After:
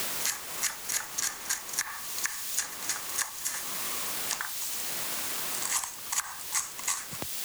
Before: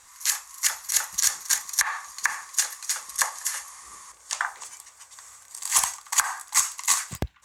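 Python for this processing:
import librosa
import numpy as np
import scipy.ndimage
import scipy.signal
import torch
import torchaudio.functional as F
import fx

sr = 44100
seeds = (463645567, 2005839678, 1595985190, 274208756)

y = fx.quant_dither(x, sr, seeds[0], bits=6, dither='triangular')
y = fx.band_squash(y, sr, depth_pct=100)
y = y * librosa.db_to_amplitude(-7.5)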